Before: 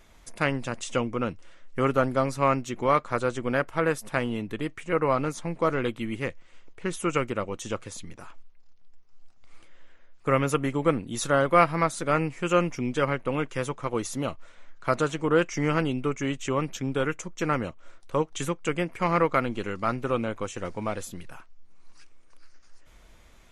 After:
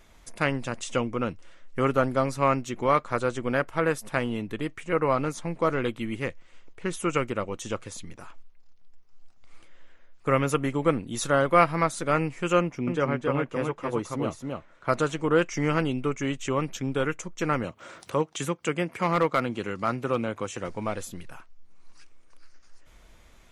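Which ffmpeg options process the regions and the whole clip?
ffmpeg -i in.wav -filter_complex "[0:a]asettb=1/sr,asplit=3[link_01][link_02][link_03];[link_01]atrim=end=12.604[link_04];[link_02]atrim=start=12.6:end=14.89,asetpts=PTS-STARTPTS,afade=type=in:duration=0.004:curve=qsin,afade=type=out:start_time=2.286:duration=0.004:curve=qsin,highpass=frequency=51:poles=1,highshelf=frequency=2900:gain=-11,aecho=1:1:272:0.668,atrim=end_sample=100989[link_05];[link_03]atrim=start=14.886[link_06];[link_04][link_05]acrossfade=duration=0.004:curve1=hsin:curve2=qsin[link_07];[link_07][link_06]acrossfade=duration=0.004:curve1=qsin:curve2=hsin,asettb=1/sr,asplit=3[link_08][link_09][link_10];[link_08]atrim=end=17.644[link_11];[link_09]atrim=start=17.64:end=20.68,asetpts=PTS-STARTPTS,afade=type=in:duration=0.004:curve=qsin,afade=type=out:start_time=3.036:duration=0.004:curve=qsin,highpass=frequency=87:width=0.5412,highpass=frequency=87:width=1.3066,volume=13dB,asoftclip=hard,volume=-13dB,acompressor=mode=upward:threshold=-31dB:ratio=2.5:attack=3.2:release=140:knee=2.83:detection=peak[link_12];[link_10]atrim=start=20.676[link_13];[link_11][link_12]acrossfade=duration=0.004:curve1=hsin:curve2=qsin[link_14];[link_14][link_13]acrossfade=duration=0.004:curve1=qsin:curve2=hsin" out.wav

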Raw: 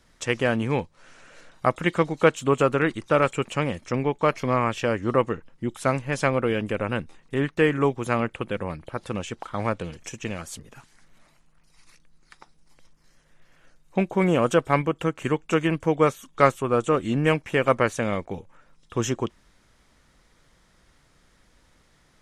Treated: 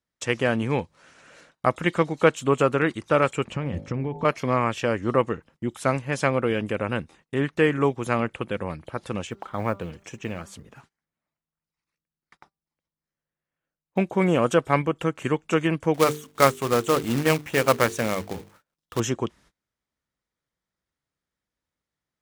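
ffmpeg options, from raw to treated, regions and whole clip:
ffmpeg -i in.wav -filter_complex "[0:a]asettb=1/sr,asplit=3[link_01][link_02][link_03];[link_01]atrim=end=3.444[link_04];[link_02]atrim=start=3.44:end=4.25,asetpts=PTS-STARTPTS,afade=type=in:duration=0.004:curve=qsin,afade=type=out:start_time=0.806:duration=0.004:curve=qsin,aemphasis=mode=reproduction:type=bsi,bandreject=frequency=51.65:width_type=h:width=4,bandreject=frequency=103.3:width_type=h:width=4,bandreject=frequency=154.95:width_type=h:width=4,bandreject=frequency=206.6:width_type=h:width=4,bandreject=frequency=258.25:width_type=h:width=4,bandreject=frequency=309.9:width_type=h:width=4,bandreject=frequency=361.55:width_type=h:width=4,bandreject=frequency=413.2:width_type=h:width=4,bandreject=frequency=464.85:width_type=h:width=4,bandreject=frequency=516.5:width_type=h:width=4,bandreject=frequency=568.15:width_type=h:width=4,bandreject=frequency=619.8:width_type=h:width=4,bandreject=frequency=671.45:width_type=h:width=4,bandreject=frequency=723.1:width_type=h:width=4,bandreject=frequency=774.75:width_type=h:width=4,bandreject=frequency=826.4:width_type=h:width=4,bandreject=frequency=878.05:width_type=h:width=4,bandreject=frequency=929.7:width_type=h:width=4,acompressor=threshold=-22dB:ratio=10:attack=3.2:release=140:knee=1:detection=peak[link_05];[link_03]atrim=start=4.246[link_06];[link_04][link_05]acrossfade=duration=0.004:curve1=hsin:curve2=qsin[link_07];[link_07][link_06]acrossfade=duration=0.004:curve1=qsin:curve2=hsin,asettb=1/sr,asplit=3[link_08][link_09][link_10];[link_08]atrim=end=9.274[link_11];[link_09]atrim=start=9.27:end=13.98,asetpts=PTS-STARTPTS,afade=type=in:duration=0.004:curve=qsin,afade=type=out:start_time=4.706:duration=0.004:curve=qsin,highshelf=frequency=4100:gain=-10,bandreject=frequency=197:width_type=h:width=4,bandreject=frequency=394:width_type=h:width=4,bandreject=frequency=591:width_type=h:width=4,bandreject=frequency=788:width_type=h:width=4,bandreject=frequency=985:width_type=h:width=4,bandreject=frequency=1182:width_type=h:width=4,bandreject=frequency=1379:width_type=h:width=4,acrusher=bits=9:mode=log:mix=0:aa=0.000001[link_12];[link_10]atrim=start=13.976[link_13];[link_11][link_12]acrossfade=duration=0.004:curve1=hsin:curve2=qsin[link_14];[link_14][link_13]acrossfade=duration=0.004:curve1=qsin:curve2=hsin,asettb=1/sr,asplit=3[link_15][link_16][link_17];[link_15]atrim=end=15.944[link_18];[link_16]atrim=start=15.94:end=19,asetpts=PTS-STARTPTS,afade=type=in:duration=0.004:curve=qsin,afade=type=out:start_time=3.056:duration=0.004:curve=qsin,bandreject=frequency=50:width_type=h:width=6,bandreject=frequency=100:width_type=h:width=6,bandreject=frequency=150:width_type=h:width=6,bandreject=frequency=200:width_type=h:width=6,bandreject=frequency=250:width_type=h:width=6,bandreject=frequency=300:width_type=h:width=6,bandreject=frequency=350:width_type=h:width=6,bandreject=frequency=400:width_type=h:width=6,bandreject=frequency=450:width_type=h:width=6,acrusher=bits=2:mode=log:mix=0:aa=0.000001[link_19];[link_17]atrim=start=18.996[link_20];[link_18][link_19]acrossfade=duration=0.004:curve1=hsin:curve2=qsin[link_21];[link_21][link_20]acrossfade=duration=0.004:curve1=qsin:curve2=hsin,highpass=58,agate=range=-26dB:threshold=-52dB:ratio=16:detection=peak" out.wav

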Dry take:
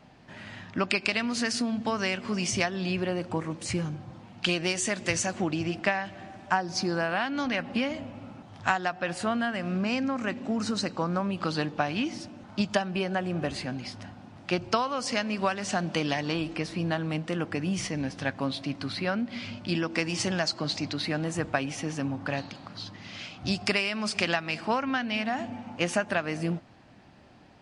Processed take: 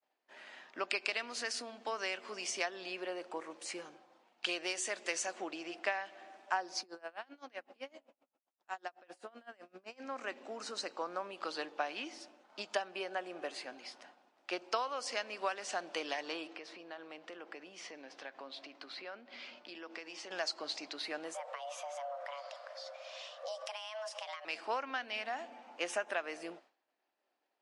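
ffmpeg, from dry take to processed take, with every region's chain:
ffmpeg -i in.wav -filter_complex "[0:a]asettb=1/sr,asplit=3[link_01][link_02][link_03];[link_01]atrim=end=6.814[link_04];[link_02]atrim=start=6.81:end=10,asetpts=PTS-STARTPTS,afade=type=in:duration=0.004:curve=qsin,afade=type=out:start_time=3.186:duration=0.004:curve=qsin,equalizer=frequency=2200:width=0.33:gain=-5.5,aeval=exprs='val(0)*pow(10,-26*(0.5-0.5*cos(2*PI*7.8*n/s))/20)':channel_layout=same[link_05];[link_03]atrim=start=9.996[link_06];[link_04][link_05]acrossfade=duration=0.004:curve1=hsin:curve2=qsin[link_07];[link_07][link_06]acrossfade=duration=0.004:curve1=qsin:curve2=hsin,asettb=1/sr,asplit=3[link_08][link_09][link_10];[link_08]atrim=end=16.474[link_11];[link_09]atrim=start=16.47:end=20.31,asetpts=PTS-STARTPTS,afade=type=in:duration=0.004:curve=qsin,afade=type=out:start_time=3.836:duration=0.004:curve=qsin,acompressor=threshold=-32dB:ratio=5:attack=3.2:release=140:knee=1:detection=peak,highpass=120,lowpass=5500[link_12];[link_10]atrim=start=20.306[link_13];[link_11][link_12]acrossfade=duration=0.004:curve1=hsin:curve2=qsin[link_14];[link_14][link_13]acrossfade=duration=0.004:curve1=qsin:curve2=hsin,asettb=1/sr,asplit=3[link_15][link_16][link_17];[link_15]atrim=end=21.344[link_18];[link_16]atrim=start=21.34:end=24.45,asetpts=PTS-STARTPTS,afade=type=in:duration=0.004:curve=qsin,afade=type=out:start_time=3.106:duration=0.004:curve=qsin,acompressor=threshold=-35dB:ratio=4:attack=3.2:release=140:knee=1:detection=peak,afreqshift=430,lowshelf=frequency=470:gain=12[link_19];[link_17]atrim=start=24.446[link_20];[link_18][link_19]acrossfade=duration=0.004:curve1=hsin:curve2=qsin[link_21];[link_21][link_20]acrossfade=duration=0.004:curve1=qsin:curve2=hsin,asettb=1/sr,asplit=3[link_22][link_23][link_24];[link_22]atrim=end=25.904[link_25];[link_23]atrim=start=25.9:end=26.3,asetpts=PTS-STARTPTS,afade=type=in:duration=0.004:curve=qsin,afade=type=out:start_time=0.396:duration=0.004:curve=qsin,bandreject=frequency=4500:width=6.4,acompressor=mode=upward:threshold=-31dB:ratio=2.5:attack=3.2:release=140:knee=2.83:detection=peak[link_26];[link_24]atrim=start=26.296[link_27];[link_25][link_26]acrossfade=duration=0.004:curve1=hsin:curve2=qsin[link_28];[link_28][link_27]acrossfade=duration=0.004:curve1=qsin:curve2=hsin,highpass=frequency=380:width=0.5412,highpass=frequency=380:width=1.3066,agate=range=-33dB:threshold=-47dB:ratio=3:detection=peak,volume=-8dB" out.wav

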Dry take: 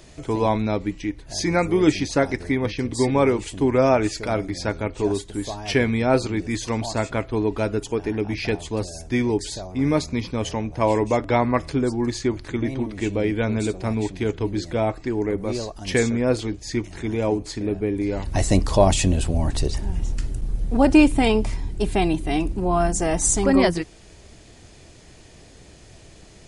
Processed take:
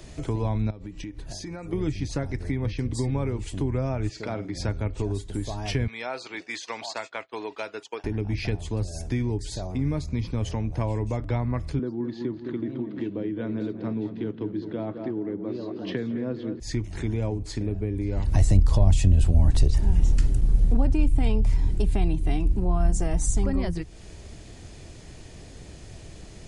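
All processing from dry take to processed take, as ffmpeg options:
ffmpeg -i in.wav -filter_complex "[0:a]asettb=1/sr,asplit=3[link_01][link_02][link_03];[link_01]atrim=end=0.704[link_04];[link_02]atrim=start=0.7:end=1.73,asetpts=PTS-STARTPTS,afade=type=in:duration=0.004:curve=qsin,afade=type=out:start_time=1.026:duration=0.004:curve=qsin,bandreject=frequency=2100:width=11,acompressor=threshold=-35dB:ratio=12:attack=3.2:release=140:knee=1:detection=peak[link_05];[link_03]atrim=start=1.726[link_06];[link_04][link_05]acrossfade=duration=0.004:curve1=hsin:curve2=qsin[link_07];[link_07][link_06]acrossfade=duration=0.004:curve1=qsin:curve2=hsin,asettb=1/sr,asplit=3[link_08][link_09][link_10];[link_08]atrim=end=4.094[link_11];[link_09]atrim=start=4.09:end=4.55,asetpts=PTS-STARTPTS,afade=type=in:duration=0.004:curve=qsin,afade=type=out:start_time=0.456:duration=0.004:curve=qsin,highpass=160,lowpass=5500,asplit=2[link_12][link_13];[link_13]adelay=49,volume=-12.5dB[link_14];[link_12][link_14]amix=inputs=2:normalize=0,atrim=end_sample=20286[link_15];[link_10]atrim=start=4.546[link_16];[link_11][link_15]acrossfade=duration=0.004:curve1=hsin:curve2=qsin[link_17];[link_17][link_16]acrossfade=duration=0.004:curve1=qsin:curve2=hsin,asettb=1/sr,asplit=3[link_18][link_19][link_20];[link_18]atrim=end=5.874[link_21];[link_19]atrim=start=5.87:end=8.04,asetpts=PTS-STARTPTS,afade=type=in:duration=0.004:curve=qsin,afade=type=out:start_time=2.166:duration=0.004:curve=qsin,agate=range=-33dB:threshold=-26dB:ratio=3:release=100:detection=peak,highpass=710,lowpass=4300,highshelf=frequency=2900:gain=9[link_22];[link_20]atrim=start=8.036[link_23];[link_21][link_22]acrossfade=duration=0.004:curve1=hsin:curve2=qsin[link_24];[link_24][link_23]acrossfade=duration=0.004:curve1=qsin:curve2=hsin,asettb=1/sr,asplit=3[link_25][link_26][link_27];[link_25]atrim=end=11.794[link_28];[link_26]atrim=start=11.79:end=16.6,asetpts=PTS-STARTPTS,afade=type=in:duration=0.004:curve=qsin,afade=type=out:start_time=4.806:duration=0.004:curve=qsin,highpass=frequency=160:width=0.5412,highpass=frequency=160:width=1.3066,equalizer=frequency=320:width_type=q:width=4:gain=6,equalizer=frequency=800:width_type=q:width=4:gain=-5,equalizer=frequency=2300:width_type=q:width=4:gain=-9,lowpass=frequency=3700:width=0.5412,lowpass=frequency=3700:width=1.3066,asplit=2[link_29][link_30];[link_30]adelay=209,lowpass=frequency=2600:poles=1,volume=-10dB,asplit=2[link_31][link_32];[link_32]adelay=209,lowpass=frequency=2600:poles=1,volume=0.52,asplit=2[link_33][link_34];[link_34]adelay=209,lowpass=frequency=2600:poles=1,volume=0.52,asplit=2[link_35][link_36];[link_36]adelay=209,lowpass=frequency=2600:poles=1,volume=0.52,asplit=2[link_37][link_38];[link_38]adelay=209,lowpass=frequency=2600:poles=1,volume=0.52,asplit=2[link_39][link_40];[link_40]adelay=209,lowpass=frequency=2600:poles=1,volume=0.52[link_41];[link_29][link_31][link_33][link_35][link_37][link_39][link_41]amix=inputs=7:normalize=0,atrim=end_sample=212121[link_42];[link_27]atrim=start=16.596[link_43];[link_28][link_42]acrossfade=duration=0.004:curve1=hsin:curve2=qsin[link_44];[link_44][link_43]acrossfade=duration=0.004:curve1=qsin:curve2=hsin,lowshelf=frequency=240:gain=6,acrossover=split=130[link_45][link_46];[link_46]acompressor=threshold=-30dB:ratio=5[link_47];[link_45][link_47]amix=inputs=2:normalize=0" out.wav

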